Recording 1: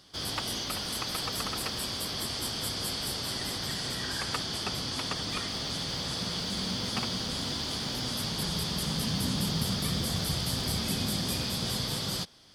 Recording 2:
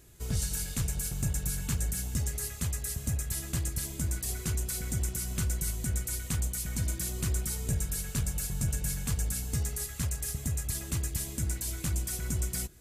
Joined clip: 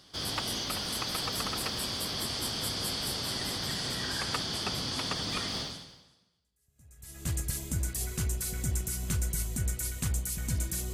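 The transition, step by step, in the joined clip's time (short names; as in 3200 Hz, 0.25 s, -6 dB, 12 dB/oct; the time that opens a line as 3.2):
recording 1
6.45 switch to recording 2 from 2.73 s, crossfade 1.70 s exponential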